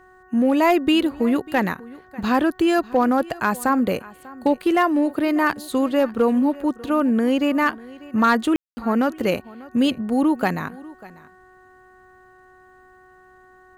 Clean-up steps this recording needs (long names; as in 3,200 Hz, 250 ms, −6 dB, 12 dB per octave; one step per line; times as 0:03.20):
clipped peaks rebuilt −10 dBFS
hum removal 370.3 Hz, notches 5
ambience match 0:08.56–0:08.77
echo removal 594 ms −20.5 dB